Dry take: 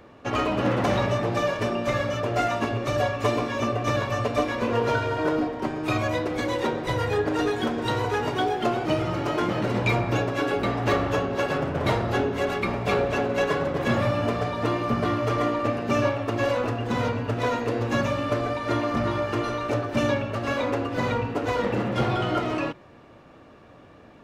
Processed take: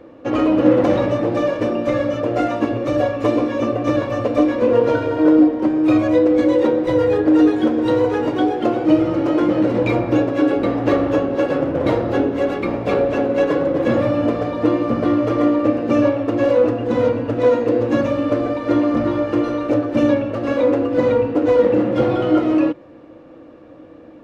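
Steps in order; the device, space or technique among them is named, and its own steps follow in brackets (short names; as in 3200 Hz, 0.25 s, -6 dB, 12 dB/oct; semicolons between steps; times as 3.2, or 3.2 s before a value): inside a helmet (high shelf 5600 Hz -8.5 dB; small resonant body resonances 310/500 Hz, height 16 dB, ringing for 60 ms)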